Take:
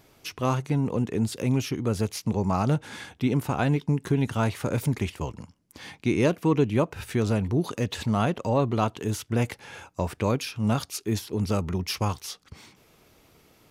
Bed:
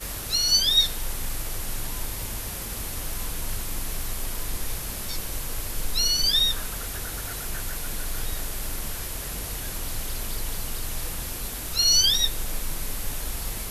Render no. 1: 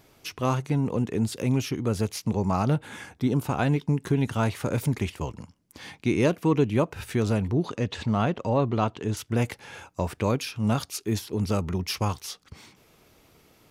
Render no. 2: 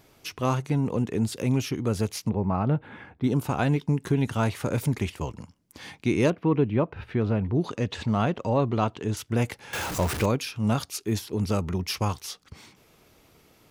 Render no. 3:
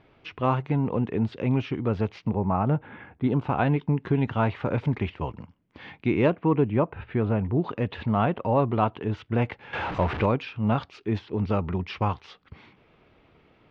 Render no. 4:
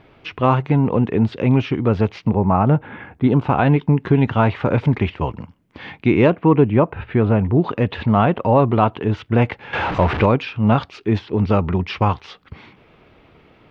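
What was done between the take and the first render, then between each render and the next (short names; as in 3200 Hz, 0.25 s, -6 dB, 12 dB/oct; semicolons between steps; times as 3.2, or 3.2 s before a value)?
2.64–3.44 bell 8400 Hz -> 1800 Hz -15 dB 0.32 oct; 7.51–9.17 air absorption 81 m
2.29–3.24 air absorption 460 m; 6.3–7.55 air absorption 350 m; 9.73–10.26 zero-crossing step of -26 dBFS
LPF 3100 Hz 24 dB/oct; dynamic EQ 870 Hz, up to +4 dB, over -40 dBFS, Q 1.4
gain +8.5 dB; limiter -3 dBFS, peak gain reduction 2.5 dB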